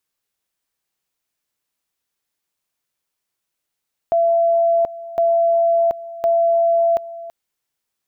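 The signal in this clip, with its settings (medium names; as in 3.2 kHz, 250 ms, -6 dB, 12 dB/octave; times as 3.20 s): two-level tone 674 Hz -12.5 dBFS, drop 17 dB, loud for 0.73 s, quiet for 0.33 s, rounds 3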